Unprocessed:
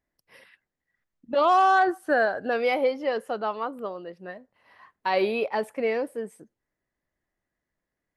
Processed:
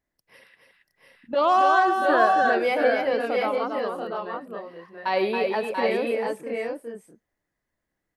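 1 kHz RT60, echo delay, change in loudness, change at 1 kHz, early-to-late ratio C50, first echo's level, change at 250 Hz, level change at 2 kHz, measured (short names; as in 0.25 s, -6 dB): none, 0.104 s, +1.5 dB, +2.5 dB, none, -13.5 dB, +2.5 dB, +3.0 dB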